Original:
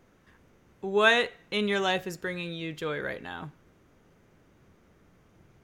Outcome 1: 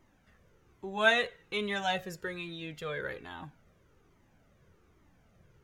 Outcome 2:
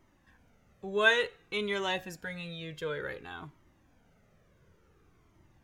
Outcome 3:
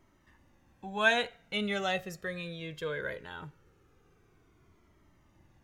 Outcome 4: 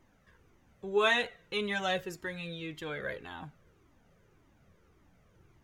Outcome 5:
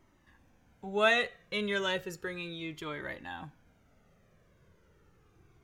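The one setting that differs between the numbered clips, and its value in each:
cascading flanger, rate: 1.2, 0.56, 0.2, 1.8, 0.34 Hz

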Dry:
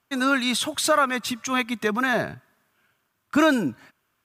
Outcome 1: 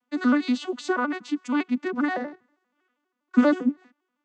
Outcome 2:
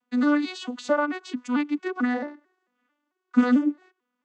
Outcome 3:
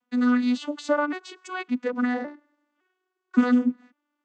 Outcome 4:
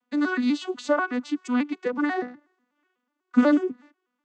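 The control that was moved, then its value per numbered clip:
arpeggiated vocoder, a note every: 80, 222, 560, 123 ms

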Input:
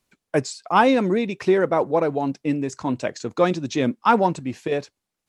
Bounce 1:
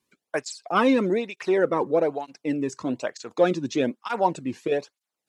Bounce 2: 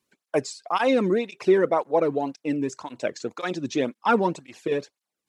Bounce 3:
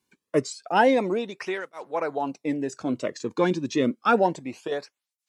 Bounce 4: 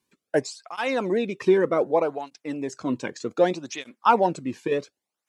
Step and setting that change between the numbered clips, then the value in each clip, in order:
tape flanging out of phase, nulls at: 1.1, 1.9, 0.29, 0.65 Hz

